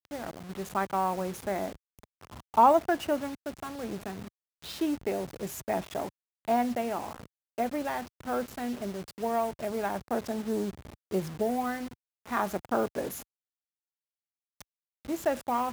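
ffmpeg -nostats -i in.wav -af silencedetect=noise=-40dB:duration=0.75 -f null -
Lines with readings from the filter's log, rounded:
silence_start: 13.23
silence_end: 14.61 | silence_duration: 1.38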